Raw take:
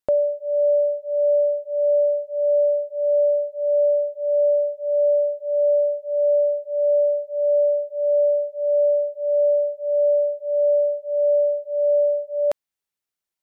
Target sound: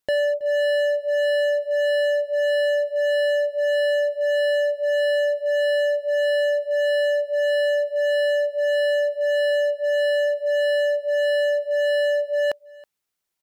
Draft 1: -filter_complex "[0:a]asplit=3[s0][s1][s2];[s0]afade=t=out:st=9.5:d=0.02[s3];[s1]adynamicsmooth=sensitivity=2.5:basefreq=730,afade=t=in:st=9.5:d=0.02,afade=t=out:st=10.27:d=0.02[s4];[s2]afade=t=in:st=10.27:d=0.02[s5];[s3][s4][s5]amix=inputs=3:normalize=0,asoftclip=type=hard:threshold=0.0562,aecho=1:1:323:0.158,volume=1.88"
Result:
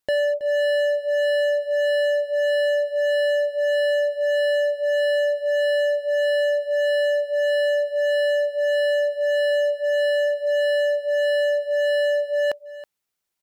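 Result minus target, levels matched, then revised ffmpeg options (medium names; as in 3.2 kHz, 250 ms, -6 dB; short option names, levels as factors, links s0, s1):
echo-to-direct +7 dB
-filter_complex "[0:a]asplit=3[s0][s1][s2];[s0]afade=t=out:st=9.5:d=0.02[s3];[s1]adynamicsmooth=sensitivity=2.5:basefreq=730,afade=t=in:st=9.5:d=0.02,afade=t=out:st=10.27:d=0.02[s4];[s2]afade=t=in:st=10.27:d=0.02[s5];[s3][s4][s5]amix=inputs=3:normalize=0,asoftclip=type=hard:threshold=0.0562,aecho=1:1:323:0.0708,volume=1.88"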